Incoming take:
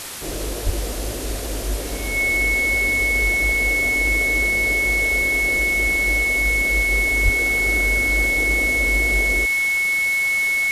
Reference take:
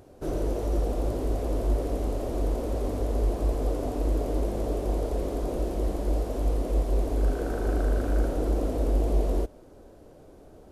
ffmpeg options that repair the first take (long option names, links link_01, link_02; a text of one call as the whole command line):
ffmpeg -i in.wav -filter_complex "[0:a]bandreject=frequency=2200:width=30,asplit=3[link_01][link_02][link_03];[link_01]afade=type=out:start_time=0.65:duration=0.02[link_04];[link_02]highpass=frequency=140:width=0.5412,highpass=frequency=140:width=1.3066,afade=type=in:start_time=0.65:duration=0.02,afade=type=out:start_time=0.77:duration=0.02[link_05];[link_03]afade=type=in:start_time=0.77:duration=0.02[link_06];[link_04][link_05][link_06]amix=inputs=3:normalize=0,asplit=3[link_07][link_08][link_09];[link_07]afade=type=out:start_time=7.24:duration=0.02[link_10];[link_08]highpass=frequency=140:width=0.5412,highpass=frequency=140:width=1.3066,afade=type=in:start_time=7.24:duration=0.02,afade=type=out:start_time=7.36:duration=0.02[link_11];[link_09]afade=type=in:start_time=7.36:duration=0.02[link_12];[link_10][link_11][link_12]amix=inputs=3:normalize=0,afwtdn=0.028" out.wav